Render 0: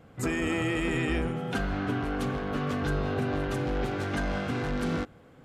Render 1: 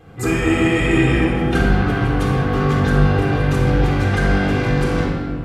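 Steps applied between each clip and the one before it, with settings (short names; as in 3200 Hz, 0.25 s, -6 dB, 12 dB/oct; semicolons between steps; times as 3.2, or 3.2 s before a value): shoebox room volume 2600 m³, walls mixed, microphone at 3.8 m; gain +5.5 dB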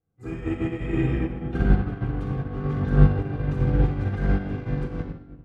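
LPF 2300 Hz 6 dB/oct; low shelf 390 Hz +8.5 dB; upward expander 2.5:1, over -27 dBFS; gain -6 dB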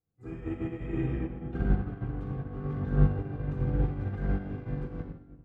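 high shelf 2400 Hz -8.5 dB; gain -7 dB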